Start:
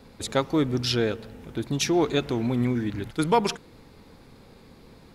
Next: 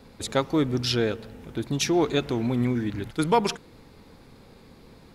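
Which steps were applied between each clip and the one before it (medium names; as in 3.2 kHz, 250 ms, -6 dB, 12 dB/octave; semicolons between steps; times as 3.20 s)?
no audible change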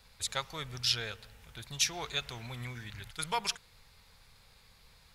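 amplifier tone stack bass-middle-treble 10-0-10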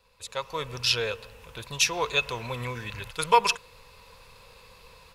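level rider gain up to 13.5 dB; small resonant body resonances 500/1000/2600 Hz, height 14 dB, ringing for 25 ms; trim -7.5 dB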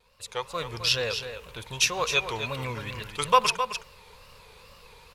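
wow and flutter 140 cents; delay 262 ms -9 dB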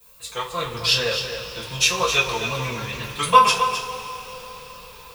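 added noise violet -57 dBFS; two-slope reverb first 0.23 s, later 4.5 s, from -22 dB, DRR -9.5 dB; trim -4 dB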